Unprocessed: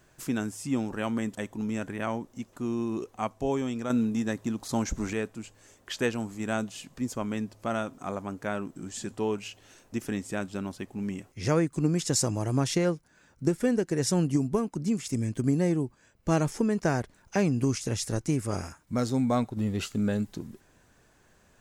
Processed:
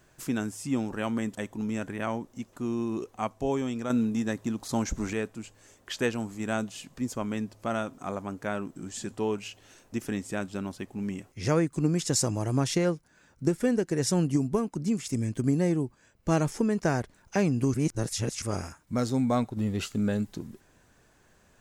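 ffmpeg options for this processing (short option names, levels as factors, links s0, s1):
-filter_complex "[0:a]asplit=3[s0][s1][s2];[s0]atrim=end=17.742[s3];[s1]atrim=start=17.738:end=18.422,asetpts=PTS-STARTPTS,areverse[s4];[s2]atrim=start=18.418[s5];[s3][s4]acrossfade=d=0.004:c1=hsin:c2=hsin[s6];[s6][s5]acrossfade=d=0.004:c1=hsin:c2=hsin"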